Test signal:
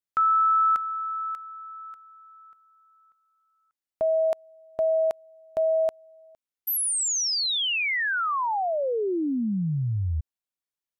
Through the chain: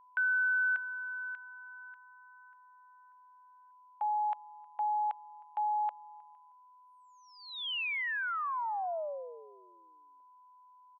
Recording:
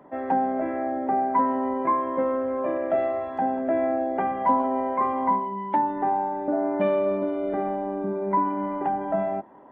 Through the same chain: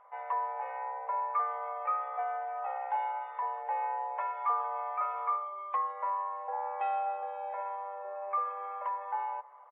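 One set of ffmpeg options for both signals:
-filter_complex "[0:a]highpass=f=390:t=q:w=0.5412,highpass=f=390:t=q:w=1.307,lowpass=f=3.1k:t=q:w=0.5176,lowpass=f=3.1k:t=q:w=0.7071,lowpass=f=3.1k:t=q:w=1.932,afreqshift=200,aeval=exprs='val(0)+0.00355*sin(2*PI*1000*n/s)':c=same,asplit=2[a][b];[b]adelay=313,lowpass=f=2k:p=1,volume=-23.5dB,asplit=2[c][d];[d]adelay=313,lowpass=f=2k:p=1,volume=0.26[e];[a][c][e]amix=inputs=3:normalize=0,volume=-8.5dB"

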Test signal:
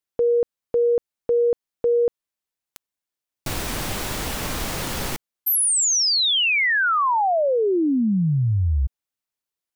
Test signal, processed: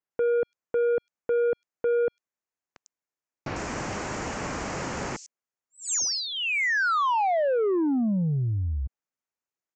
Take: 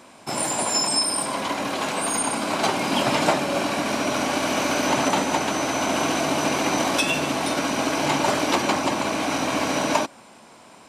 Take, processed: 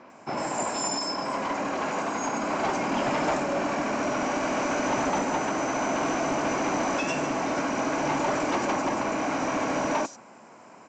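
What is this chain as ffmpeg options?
-filter_complex "[0:a]highpass=f=150:p=1,equalizer=f=3.6k:t=o:w=0.74:g=-13.5,aresample=16000,asoftclip=type=tanh:threshold=-20.5dB,aresample=44100,acrossover=split=4900[a][b];[b]adelay=100[c];[a][c]amix=inputs=2:normalize=0"

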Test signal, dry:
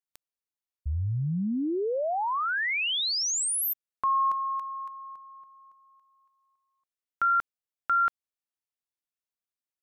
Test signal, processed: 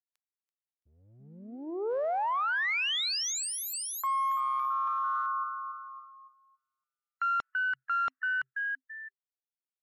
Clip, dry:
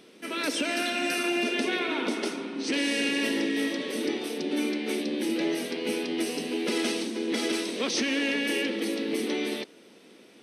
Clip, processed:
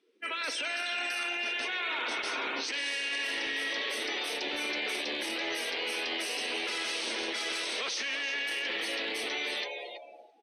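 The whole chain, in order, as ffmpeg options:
-filter_complex "[0:a]asplit=2[a][b];[b]aeval=exprs='clip(val(0),-1,0.0251)':c=same,volume=-7dB[c];[a][c]amix=inputs=2:normalize=0,dynaudnorm=f=680:g=7:m=10dB,asplit=4[d][e][f][g];[e]adelay=334,afreqshift=130,volume=-13dB[h];[f]adelay=668,afreqshift=260,volume=-23.2dB[i];[g]adelay=1002,afreqshift=390,volume=-33.3dB[j];[d][h][i][j]amix=inputs=4:normalize=0,afftdn=nr=27:nf=-39,highpass=1k,areverse,acompressor=threshold=-31dB:ratio=12:attack=0.22:release=52:knee=1:detection=peak,areverse,highshelf=f=8.3k:g=-10.5,volume=4.5dB"

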